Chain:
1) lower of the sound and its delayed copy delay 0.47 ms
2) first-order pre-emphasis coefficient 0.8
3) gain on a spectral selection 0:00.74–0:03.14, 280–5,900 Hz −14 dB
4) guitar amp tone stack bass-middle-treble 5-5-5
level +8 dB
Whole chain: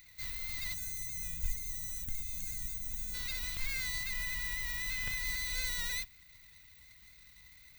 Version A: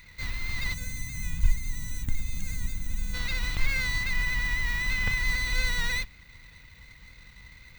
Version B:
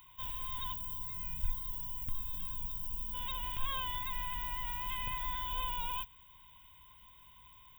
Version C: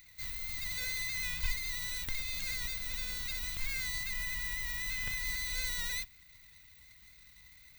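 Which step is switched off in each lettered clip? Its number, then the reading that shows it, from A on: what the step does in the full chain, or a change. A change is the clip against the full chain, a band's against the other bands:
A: 2, 8 kHz band −12.0 dB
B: 1, 1 kHz band +19.0 dB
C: 3, change in momentary loudness spread −18 LU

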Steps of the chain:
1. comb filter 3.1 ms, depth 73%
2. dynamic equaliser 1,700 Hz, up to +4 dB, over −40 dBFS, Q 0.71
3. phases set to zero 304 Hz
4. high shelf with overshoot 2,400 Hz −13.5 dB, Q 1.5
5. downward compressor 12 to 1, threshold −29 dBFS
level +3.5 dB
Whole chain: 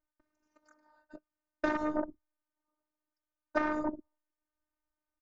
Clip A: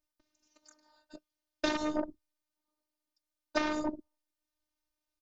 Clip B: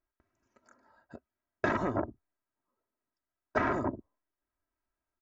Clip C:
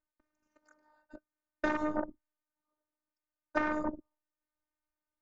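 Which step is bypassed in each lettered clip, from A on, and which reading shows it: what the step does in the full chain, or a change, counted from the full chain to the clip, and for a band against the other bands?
4, 4 kHz band +15.5 dB
3, 125 Hz band +13.5 dB
1, 125 Hz band +2.0 dB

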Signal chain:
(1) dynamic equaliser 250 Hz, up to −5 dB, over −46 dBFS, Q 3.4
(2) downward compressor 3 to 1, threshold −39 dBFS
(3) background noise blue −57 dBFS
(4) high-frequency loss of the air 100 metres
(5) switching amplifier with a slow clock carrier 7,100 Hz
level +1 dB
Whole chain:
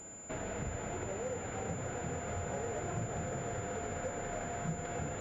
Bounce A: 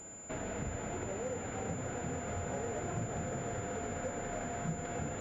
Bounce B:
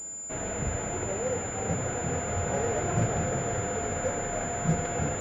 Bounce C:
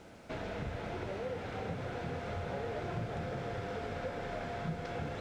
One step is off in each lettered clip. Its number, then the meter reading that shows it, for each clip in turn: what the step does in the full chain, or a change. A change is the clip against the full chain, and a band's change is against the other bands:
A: 1, 250 Hz band +2.0 dB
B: 2, average gain reduction 7.5 dB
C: 5, 4 kHz band +5.0 dB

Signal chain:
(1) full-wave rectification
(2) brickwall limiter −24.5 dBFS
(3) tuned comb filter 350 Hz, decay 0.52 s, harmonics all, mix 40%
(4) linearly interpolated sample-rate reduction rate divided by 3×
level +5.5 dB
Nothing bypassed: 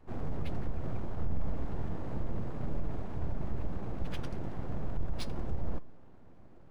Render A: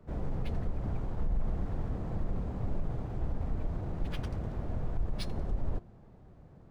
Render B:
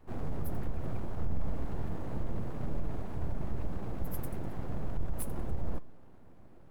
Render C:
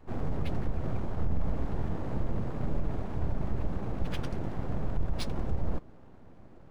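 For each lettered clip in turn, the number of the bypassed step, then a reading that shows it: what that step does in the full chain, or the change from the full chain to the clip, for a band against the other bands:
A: 1, 125 Hz band +2.0 dB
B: 4, 4 kHz band −8.0 dB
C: 3, change in integrated loudness +4.5 LU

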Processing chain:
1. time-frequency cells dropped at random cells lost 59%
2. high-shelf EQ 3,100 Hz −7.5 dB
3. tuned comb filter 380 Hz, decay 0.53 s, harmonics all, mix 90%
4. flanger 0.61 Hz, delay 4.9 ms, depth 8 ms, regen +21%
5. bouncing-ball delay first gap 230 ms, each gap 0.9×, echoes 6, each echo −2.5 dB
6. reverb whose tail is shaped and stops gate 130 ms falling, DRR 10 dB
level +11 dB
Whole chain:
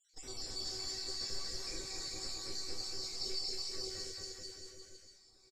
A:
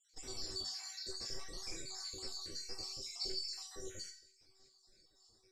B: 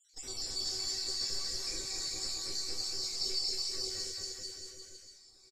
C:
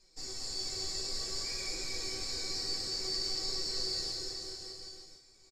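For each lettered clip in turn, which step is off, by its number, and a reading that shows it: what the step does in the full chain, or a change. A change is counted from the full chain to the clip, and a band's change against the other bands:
5, echo-to-direct ratio 1.5 dB to −10.0 dB
2, 8 kHz band +6.0 dB
1, 2 kHz band +2.0 dB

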